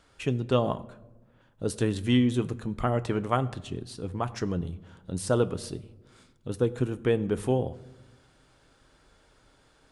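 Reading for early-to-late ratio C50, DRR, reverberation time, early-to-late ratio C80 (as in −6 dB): 18.5 dB, 11.0 dB, 1.1 s, 20.0 dB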